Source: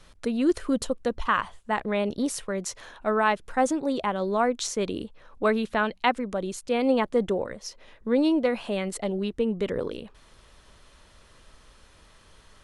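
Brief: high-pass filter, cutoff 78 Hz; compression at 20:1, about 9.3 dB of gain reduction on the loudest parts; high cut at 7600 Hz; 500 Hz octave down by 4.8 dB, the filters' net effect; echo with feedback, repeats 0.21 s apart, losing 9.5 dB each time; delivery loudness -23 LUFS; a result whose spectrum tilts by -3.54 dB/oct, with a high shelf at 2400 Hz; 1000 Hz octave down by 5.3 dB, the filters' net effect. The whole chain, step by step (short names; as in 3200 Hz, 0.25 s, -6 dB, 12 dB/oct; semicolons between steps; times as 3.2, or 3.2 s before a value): HPF 78 Hz; LPF 7600 Hz; bell 500 Hz -4.5 dB; bell 1000 Hz -6.5 dB; high shelf 2400 Hz +6.5 dB; compressor 20:1, threshold -29 dBFS; feedback echo 0.21 s, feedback 33%, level -9.5 dB; gain +11.5 dB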